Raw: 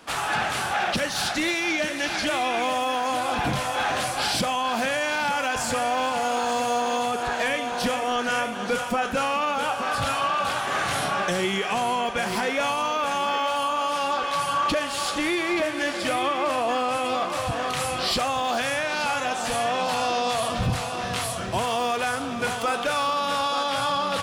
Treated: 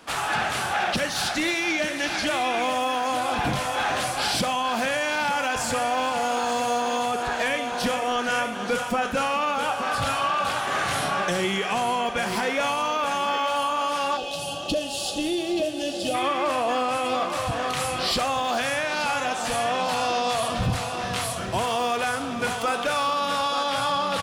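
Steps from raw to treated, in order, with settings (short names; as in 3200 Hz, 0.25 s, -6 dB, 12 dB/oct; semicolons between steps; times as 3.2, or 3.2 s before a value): spectral gain 14.17–16.14, 860–2500 Hz -18 dB; on a send: feedback echo 63 ms, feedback 48%, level -17 dB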